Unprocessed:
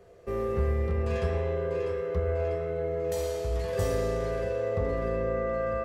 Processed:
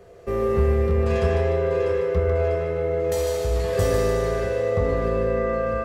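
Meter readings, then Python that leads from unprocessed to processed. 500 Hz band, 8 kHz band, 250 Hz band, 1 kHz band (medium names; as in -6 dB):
+7.0 dB, +8.0 dB, +7.5 dB, +7.0 dB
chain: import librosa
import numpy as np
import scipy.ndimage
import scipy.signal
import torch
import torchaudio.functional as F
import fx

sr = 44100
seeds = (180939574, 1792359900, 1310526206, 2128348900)

y = fx.echo_thinned(x, sr, ms=149, feedback_pct=48, hz=420.0, wet_db=-5.5)
y = y * 10.0 ** (6.5 / 20.0)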